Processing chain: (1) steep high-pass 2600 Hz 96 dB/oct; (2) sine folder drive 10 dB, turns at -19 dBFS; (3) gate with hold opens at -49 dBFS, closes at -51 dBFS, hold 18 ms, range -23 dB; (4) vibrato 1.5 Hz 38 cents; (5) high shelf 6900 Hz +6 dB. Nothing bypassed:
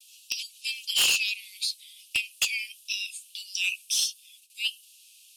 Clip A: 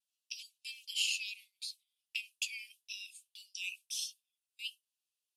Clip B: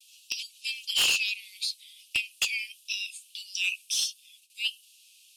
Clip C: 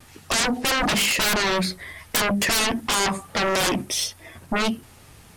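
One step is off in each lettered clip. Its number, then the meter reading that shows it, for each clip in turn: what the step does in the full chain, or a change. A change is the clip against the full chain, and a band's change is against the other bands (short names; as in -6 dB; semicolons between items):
2, crest factor change +8.0 dB; 5, 8 kHz band -2.5 dB; 1, 1 kHz band +22.0 dB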